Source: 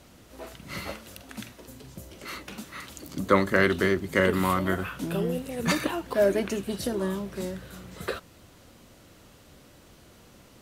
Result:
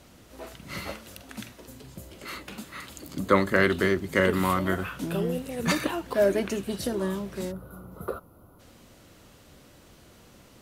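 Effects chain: 1.83–3.86 notch 5800 Hz, Q 11; 7.52–8.6 spectral gain 1500–9900 Hz -20 dB

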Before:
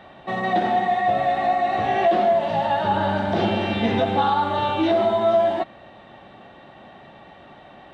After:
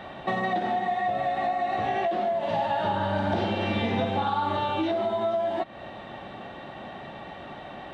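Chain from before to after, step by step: compressor 10:1, threshold -29 dBFS, peak gain reduction 15 dB; 2.38–4.57 flutter echo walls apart 8.9 m, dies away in 0.55 s; gain +5 dB

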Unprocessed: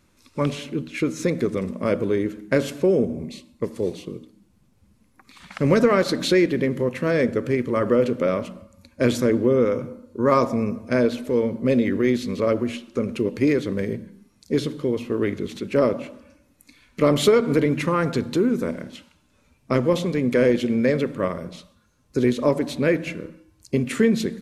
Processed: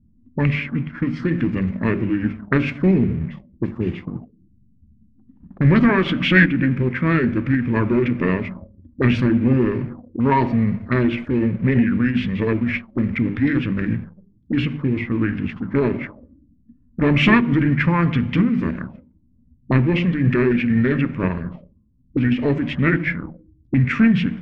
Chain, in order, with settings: formant shift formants -4 st; low shelf 200 Hz +11 dB; notches 50/100/150/200/250/300/350/400 Hz; sample leveller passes 1; bell 480 Hz -6 dB 2 oct; envelope low-pass 230–2300 Hz up, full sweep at -19 dBFS; gain -1 dB

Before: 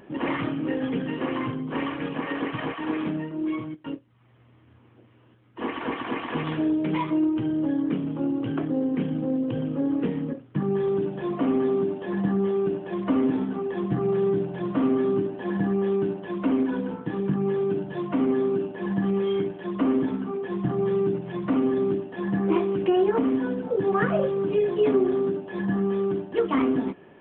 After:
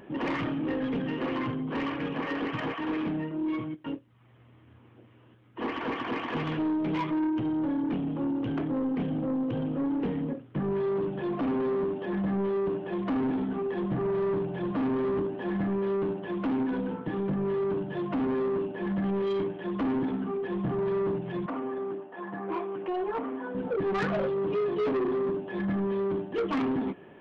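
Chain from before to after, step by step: 21.46–23.55 band-pass 1000 Hz, Q 1.1; soft clip -24.5 dBFS, distortion -11 dB

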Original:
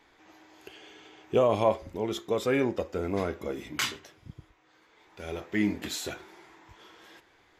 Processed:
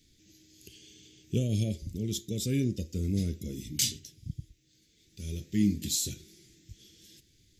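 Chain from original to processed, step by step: Chebyshev band-stop 160–5700 Hz, order 2; gain +8.5 dB

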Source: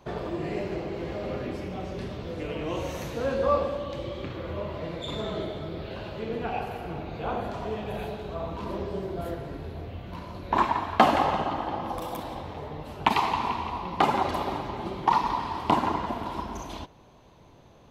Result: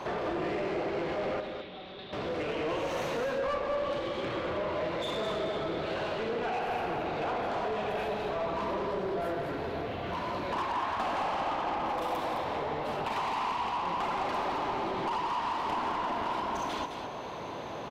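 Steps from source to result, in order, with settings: compressor 3:1, threshold -45 dBFS, peak gain reduction 23 dB; overdrive pedal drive 32 dB, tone 2000 Hz, clips at -19.5 dBFS; 1.4–2.13 ladder low-pass 3900 Hz, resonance 80%; echo 0.212 s -7 dB; gain -4 dB

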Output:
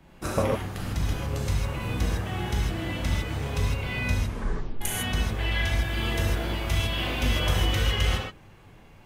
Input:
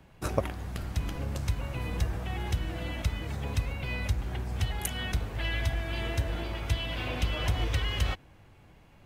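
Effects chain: 4.11 tape stop 0.70 s; 5.76–7.8 high shelf 10000 Hz +8 dB; non-linear reverb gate 0.18 s flat, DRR -4.5 dB

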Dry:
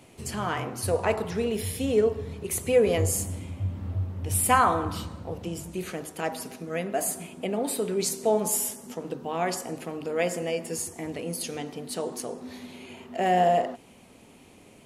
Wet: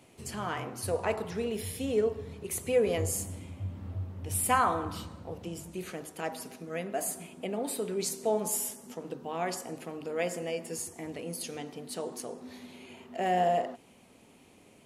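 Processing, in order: low shelf 79 Hz -5 dB; gain -5 dB

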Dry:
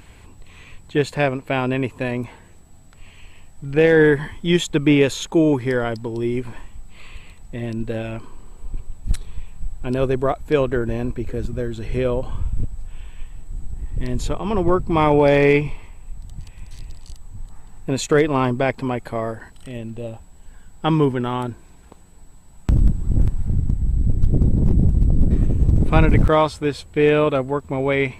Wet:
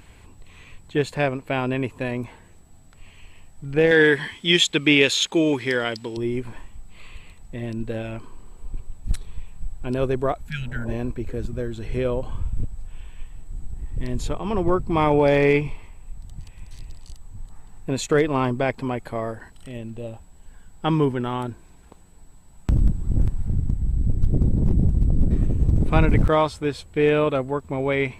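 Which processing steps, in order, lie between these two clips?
3.91–6.17 weighting filter D; 10.49–10.91 spectral repair 250–1300 Hz both; gain -3 dB

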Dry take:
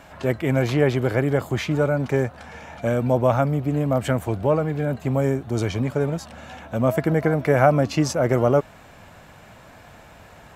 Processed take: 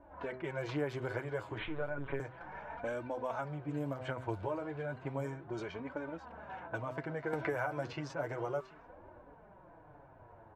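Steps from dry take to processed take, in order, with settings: compressor 4:1, threshold -28 dBFS, peak gain reduction 14.5 dB; de-hum 128.8 Hz, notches 18; 1.58–2.2 LPC vocoder at 8 kHz pitch kept; bell 240 Hz -13.5 dB 0.98 oct; echo 0.74 s -20.5 dB; flange 0.33 Hz, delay 3.2 ms, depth 6.5 ms, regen -1%; low shelf 150 Hz -4 dB; small resonant body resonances 300/960/1500 Hz, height 9 dB, ringing for 30 ms; low-pass opened by the level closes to 400 Hz, open at -29.5 dBFS; 7.33–7.93 three-band squash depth 100%; gain -2.5 dB

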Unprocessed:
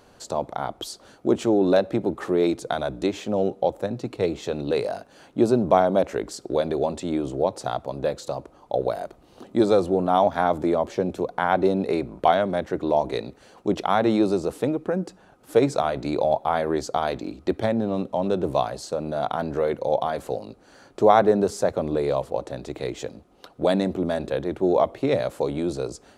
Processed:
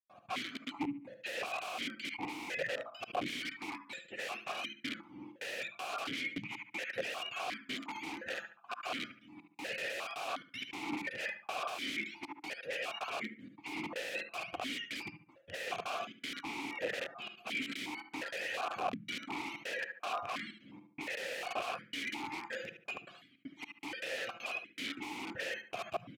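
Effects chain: spectrum mirrored in octaves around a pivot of 940 Hz; step gate ".x.xxx.xx." 158 bpm -60 dB; early reflections 52 ms -16.5 dB, 76 ms -12.5 dB; soft clip -11 dBFS, distortion -26 dB; darkening echo 70 ms, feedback 38%, low-pass 2300 Hz, level -9 dB; wrapped overs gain 28 dB; vowel sequencer 2.8 Hz; gain +10 dB

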